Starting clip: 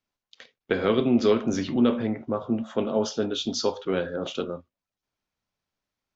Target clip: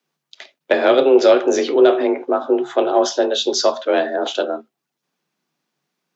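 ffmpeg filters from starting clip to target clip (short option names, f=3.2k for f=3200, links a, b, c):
-af "acontrast=64,afreqshift=140,volume=3dB"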